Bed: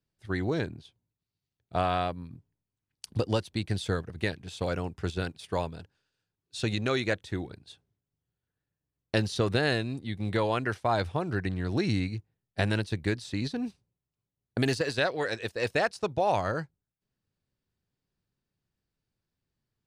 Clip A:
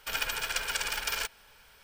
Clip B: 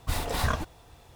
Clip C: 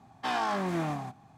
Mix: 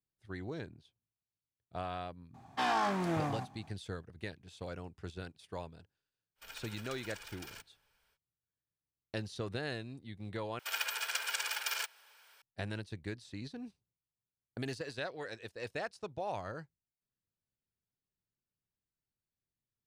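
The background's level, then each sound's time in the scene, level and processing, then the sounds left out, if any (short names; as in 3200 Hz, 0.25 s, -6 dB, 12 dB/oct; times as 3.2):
bed -12.5 dB
2.34 add C -0.5 dB + core saturation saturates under 530 Hz
6.35 add A -18 dB, fades 0.05 s
10.59 replace with A -4 dB + HPF 650 Hz
not used: B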